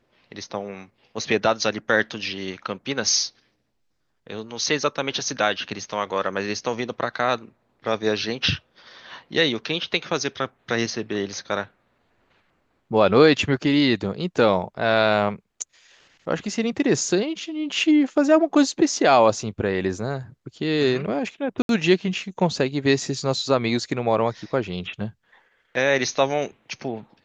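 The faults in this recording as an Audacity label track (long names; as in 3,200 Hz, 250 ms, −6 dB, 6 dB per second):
21.620000	21.690000	drop-out 72 ms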